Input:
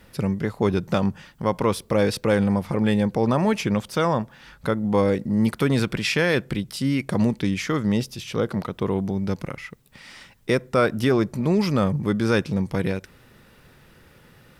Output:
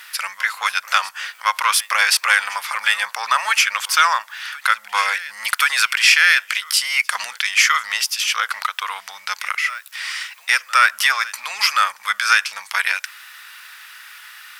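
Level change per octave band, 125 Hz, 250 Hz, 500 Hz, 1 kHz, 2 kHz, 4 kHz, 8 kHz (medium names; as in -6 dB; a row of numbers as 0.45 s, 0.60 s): under -40 dB, under -40 dB, -19.0 dB, +10.0 dB, +15.0 dB, +14.0 dB, +16.5 dB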